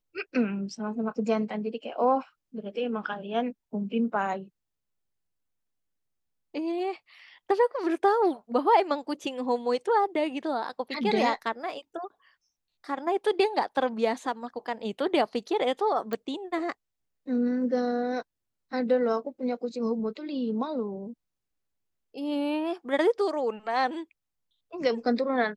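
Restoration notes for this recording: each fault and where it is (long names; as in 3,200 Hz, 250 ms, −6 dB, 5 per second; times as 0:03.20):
0:16.13: click −18 dBFS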